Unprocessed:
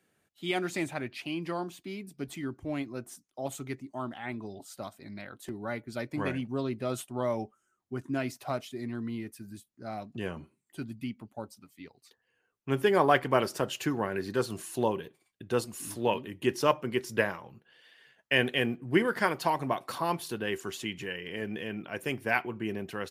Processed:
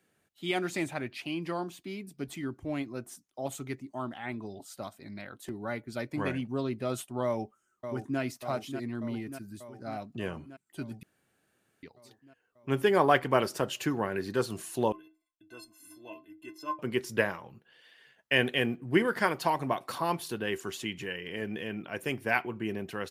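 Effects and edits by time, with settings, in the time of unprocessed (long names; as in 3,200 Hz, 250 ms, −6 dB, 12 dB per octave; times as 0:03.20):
0:07.24–0:08.20: delay throw 590 ms, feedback 70%, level −8.5 dB
0:11.03–0:11.83: fill with room tone
0:14.92–0:16.79: stiff-string resonator 310 Hz, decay 0.23 s, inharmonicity 0.03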